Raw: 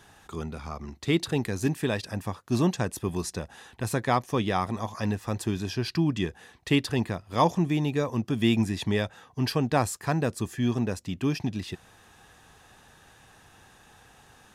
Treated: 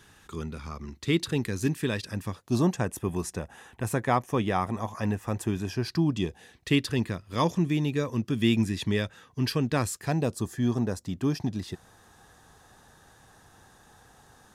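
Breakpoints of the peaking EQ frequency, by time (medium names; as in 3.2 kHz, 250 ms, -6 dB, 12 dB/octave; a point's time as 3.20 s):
peaking EQ -9.5 dB 0.68 oct
2.28 s 730 Hz
2.77 s 4.3 kHz
5.65 s 4.3 kHz
6.71 s 770 Hz
9.92 s 770 Hz
10.46 s 2.6 kHz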